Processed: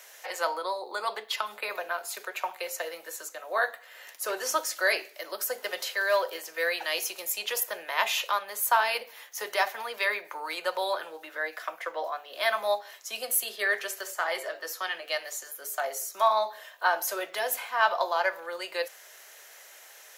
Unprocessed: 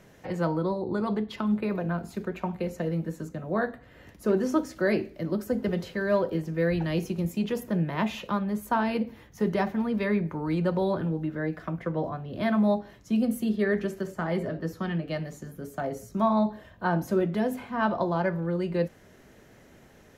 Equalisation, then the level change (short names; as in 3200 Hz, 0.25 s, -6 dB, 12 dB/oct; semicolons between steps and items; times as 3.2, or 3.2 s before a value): HPF 540 Hz 24 dB/oct; tilt +4 dB/oct; +4.0 dB